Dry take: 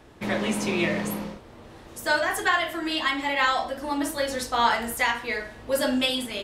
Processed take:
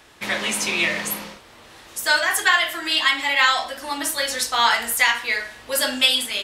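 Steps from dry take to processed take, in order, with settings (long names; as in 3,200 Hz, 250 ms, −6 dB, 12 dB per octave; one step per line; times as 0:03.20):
tilt shelving filter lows −9 dB, about 880 Hz
level +1.5 dB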